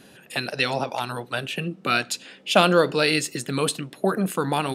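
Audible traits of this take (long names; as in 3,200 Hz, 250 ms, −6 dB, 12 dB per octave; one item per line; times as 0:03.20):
background noise floor −51 dBFS
spectral slope −4.0 dB per octave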